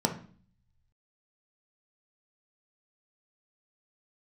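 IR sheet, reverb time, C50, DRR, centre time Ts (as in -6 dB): 0.45 s, 10.5 dB, 3.0 dB, 13 ms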